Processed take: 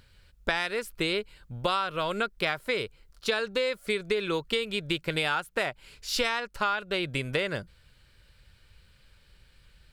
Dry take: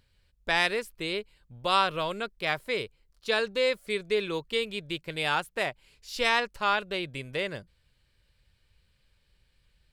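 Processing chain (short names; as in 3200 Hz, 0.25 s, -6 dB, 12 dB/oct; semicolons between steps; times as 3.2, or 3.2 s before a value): bell 1400 Hz +6.5 dB 0.27 oct; compressor 16:1, threshold -33 dBFS, peak gain reduction 17.5 dB; gain +9 dB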